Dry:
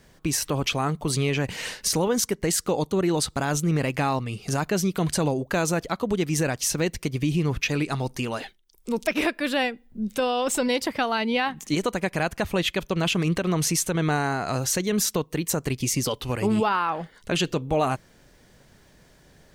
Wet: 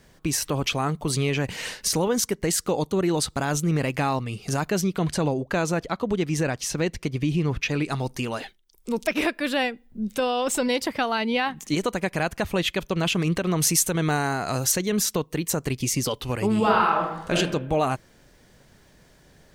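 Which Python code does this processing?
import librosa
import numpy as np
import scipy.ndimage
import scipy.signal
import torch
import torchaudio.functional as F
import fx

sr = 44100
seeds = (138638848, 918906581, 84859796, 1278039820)

y = fx.high_shelf(x, sr, hz=7900.0, db=-11.0, at=(4.81, 7.85))
y = fx.high_shelf(y, sr, hz=7800.0, db=9.0, at=(13.6, 14.72))
y = fx.reverb_throw(y, sr, start_s=16.57, length_s=0.79, rt60_s=0.86, drr_db=-1.5)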